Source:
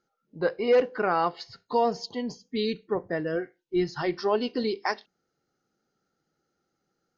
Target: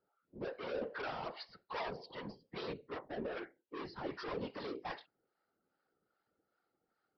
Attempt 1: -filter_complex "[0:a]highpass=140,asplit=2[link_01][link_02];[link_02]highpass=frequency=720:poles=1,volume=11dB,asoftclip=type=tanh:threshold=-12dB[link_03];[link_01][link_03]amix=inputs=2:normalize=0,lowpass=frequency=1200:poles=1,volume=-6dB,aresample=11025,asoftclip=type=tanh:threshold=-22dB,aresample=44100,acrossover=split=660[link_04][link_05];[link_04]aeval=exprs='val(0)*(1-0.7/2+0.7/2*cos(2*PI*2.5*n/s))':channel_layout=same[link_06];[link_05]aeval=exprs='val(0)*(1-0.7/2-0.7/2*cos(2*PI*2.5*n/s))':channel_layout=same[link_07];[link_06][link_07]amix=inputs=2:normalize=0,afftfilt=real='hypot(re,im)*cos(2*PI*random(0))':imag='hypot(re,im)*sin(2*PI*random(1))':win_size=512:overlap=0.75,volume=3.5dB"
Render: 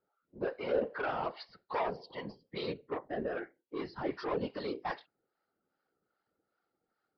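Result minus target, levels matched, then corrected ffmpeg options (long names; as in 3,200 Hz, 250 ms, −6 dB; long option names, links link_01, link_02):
soft clipping: distortion −7 dB
-filter_complex "[0:a]highpass=140,asplit=2[link_01][link_02];[link_02]highpass=frequency=720:poles=1,volume=11dB,asoftclip=type=tanh:threshold=-12dB[link_03];[link_01][link_03]amix=inputs=2:normalize=0,lowpass=frequency=1200:poles=1,volume=-6dB,aresample=11025,asoftclip=type=tanh:threshold=-32.5dB,aresample=44100,acrossover=split=660[link_04][link_05];[link_04]aeval=exprs='val(0)*(1-0.7/2+0.7/2*cos(2*PI*2.5*n/s))':channel_layout=same[link_06];[link_05]aeval=exprs='val(0)*(1-0.7/2-0.7/2*cos(2*PI*2.5*n/s))':channel_layout=same[link_07];[link_06][link_07]amix=inputs=2:normalize=0,afftfilt=real='hypot(re,im)*cos(2*PI*random(0))':imag='hypot(re,im)*sin(2*PI*random(1))':win_size=512:overlap=0.75,volume=3.5dB"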